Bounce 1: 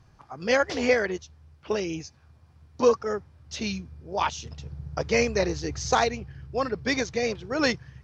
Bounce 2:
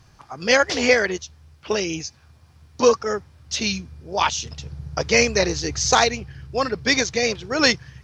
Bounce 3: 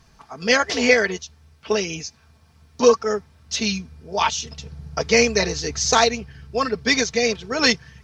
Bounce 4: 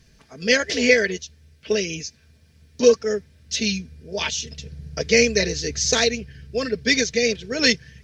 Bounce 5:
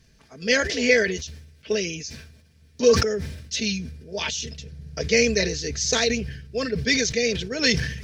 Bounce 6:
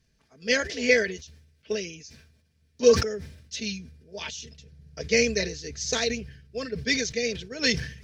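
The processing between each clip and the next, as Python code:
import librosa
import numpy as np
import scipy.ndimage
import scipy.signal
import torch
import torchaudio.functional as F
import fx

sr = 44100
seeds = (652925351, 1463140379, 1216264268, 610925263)

y1 = fx.high_shelf(x, sr, hz=2100.0, db=9.0)
y1 = y1 * librosa.db_to_amplitude(3.5)
y2 = y1 + 0.54 * np.pad(y1, (int(4.5 * sr / 1000.0), 0))[:len(y1)]
y2 = y2 * librosa.db_to_amplitude(-1.0)
y3 = fx.band_shelf(y2, sr, hz=980.0, db=-14.0, octaves=1.1)
y4 = fx.sustainer(y3, sr, db_per_s=59.0)
y4 = y4 * librosa.db_to_amplitude(-3.0)
y5 = fx.upward_expand(y4, sr, threshold_db=-34.0, expansion=1.5)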